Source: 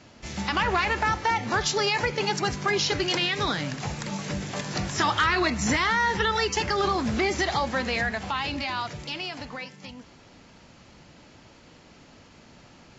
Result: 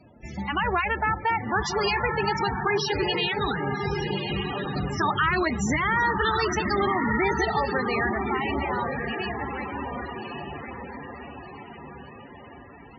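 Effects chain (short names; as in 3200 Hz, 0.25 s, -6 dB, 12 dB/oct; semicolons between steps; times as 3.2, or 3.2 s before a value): 5.92–7.98 high shelf 6400 Hz +4.5 dB; diffused feedback echo 1.151 s, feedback 50%, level -3 dB; loudest bins only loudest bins 32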